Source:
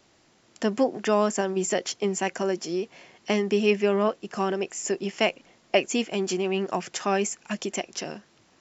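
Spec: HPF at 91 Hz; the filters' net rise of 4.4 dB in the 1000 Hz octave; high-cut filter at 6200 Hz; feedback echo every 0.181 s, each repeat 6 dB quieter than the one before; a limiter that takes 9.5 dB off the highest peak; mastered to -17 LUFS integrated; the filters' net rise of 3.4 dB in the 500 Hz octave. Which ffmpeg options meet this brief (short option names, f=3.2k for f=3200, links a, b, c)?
-af "highpass=91,lowpass=6.2k,equalizer=f=500:t=o:g=3.5,equalizer=f=1k:t=o:g=4.5,alimiter=limit=-13dB:level=0:latency=1,aecho=1:1:181|362|543|724|905|1086:0.501|0.251|0.125|0.0626|0.0313|0.0157,volume=8dB"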